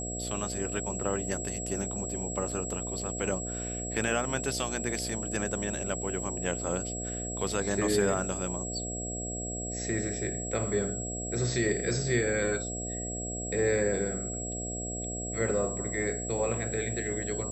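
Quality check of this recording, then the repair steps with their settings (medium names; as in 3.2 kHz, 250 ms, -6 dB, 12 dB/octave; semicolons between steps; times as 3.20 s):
buzz 60 Hz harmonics 12 -38 dBFS
whine 7.7 kHz -36 dBFS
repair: de-hum 60 Hz, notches 12; band-stop 7.7 kHz, Q 30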